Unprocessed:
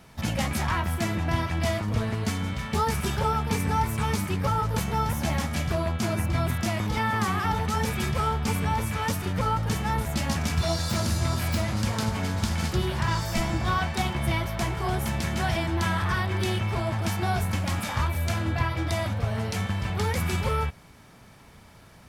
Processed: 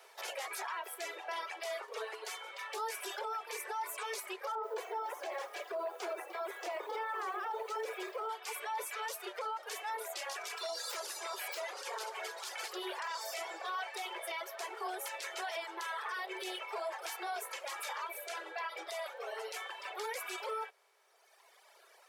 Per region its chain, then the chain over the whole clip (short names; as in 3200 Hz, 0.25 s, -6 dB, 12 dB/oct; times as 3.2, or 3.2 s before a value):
4.55–8.29 tilt -4 dB/oct + lo-fi delay 83 ms, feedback 35%, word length 7-bit, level -11 dB
whole clip: reverb removal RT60 1.9 s; steep high-pass 380 Hz 96 dB/oct; limiter -28 dBFS; gain -3 dB